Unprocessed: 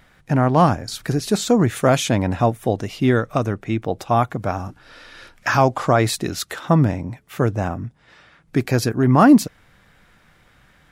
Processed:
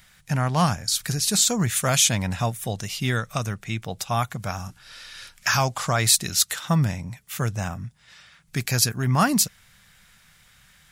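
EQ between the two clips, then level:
drawn EQ curve 190 Hz 0 dB, 290 Hz −12 dB, 7,300 Hz +14 dB
−4.0 dB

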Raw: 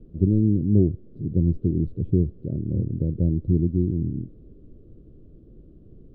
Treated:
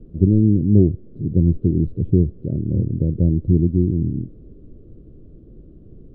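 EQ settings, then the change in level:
high-frequency loss of the air 150 metres
+5.0 dB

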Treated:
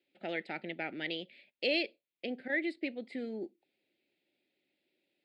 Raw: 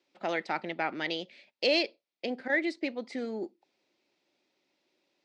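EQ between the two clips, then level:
phaser with its sweep stopped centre 2,600 Hz, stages 4
−2.5 dB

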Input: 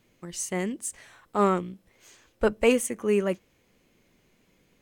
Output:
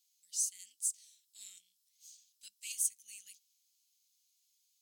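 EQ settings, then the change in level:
inverse Chebyshev high-pass filter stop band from 1,300 Hz, stop band 60 dB
0.0 dB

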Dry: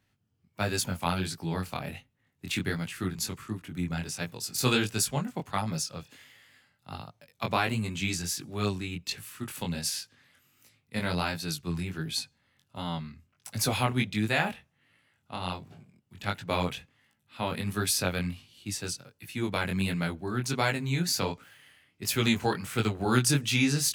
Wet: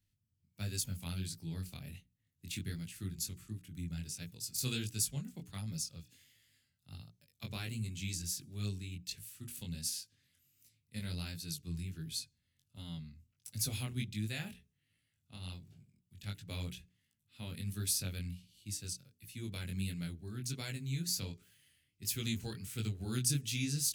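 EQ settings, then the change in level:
guitar amp tone stack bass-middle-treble 10-0-1
high-shelf EQ 3,000 Hz +10.5 dB
mains-hum notches 60/120/180/240/300/360/420 Hz
+6.0 dB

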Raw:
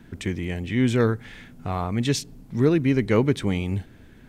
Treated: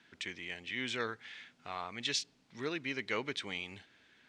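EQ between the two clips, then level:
resonant band-pass 4,200 Hz, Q 0.74
high-frequency loss of the air 75 metres
0.0 dB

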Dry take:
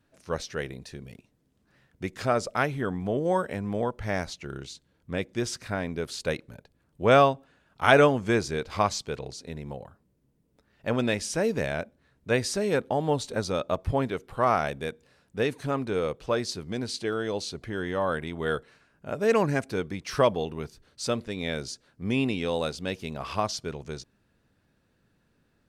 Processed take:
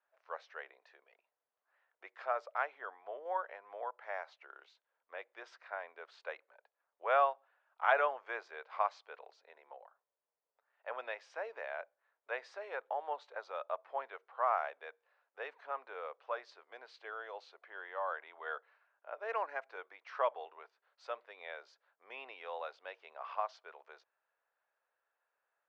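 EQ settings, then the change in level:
Bessel high-pass filter 1,100 Hz, order 6
head-to-tape spacing loss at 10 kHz 44 dB
high-shelf EQ 2,000 Hz −10.5 dB
+3.5 dB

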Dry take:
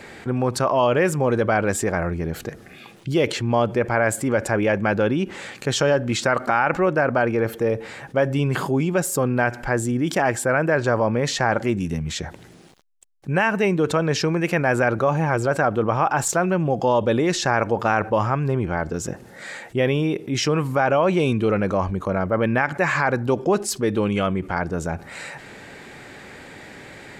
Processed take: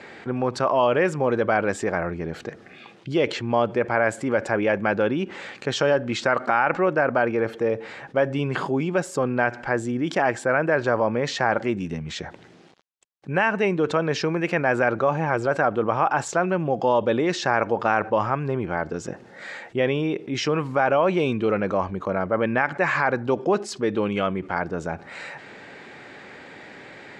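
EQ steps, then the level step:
high-pass filter 240 Hz 6 dB per octave
high-frequency loss of the air 110 metres
0.0 dB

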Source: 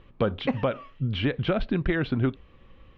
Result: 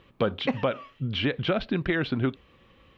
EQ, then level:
high-pass filter 130 Hz 6 dB per octave
high-shelf EQ 3,600 Hz +8.5 dB
0.0 dB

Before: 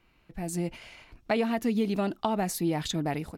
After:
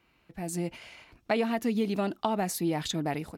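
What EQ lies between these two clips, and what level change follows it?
high-pass filter 46 Hz
low-shelf EQ 150 Hz −4.5 dB
0.0 dB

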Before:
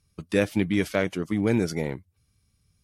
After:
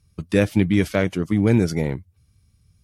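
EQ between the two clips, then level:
parametric band 75 Hz +8 dB 2.8 octaves
+2.5 dB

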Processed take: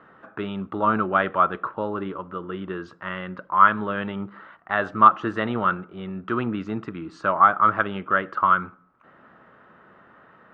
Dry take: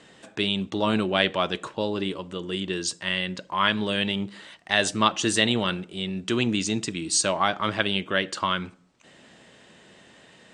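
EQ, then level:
low-pass with resonance 1,300 Hz, resonance Q 6.5
high-frequency loss of the air 50 metres
−2.0 dB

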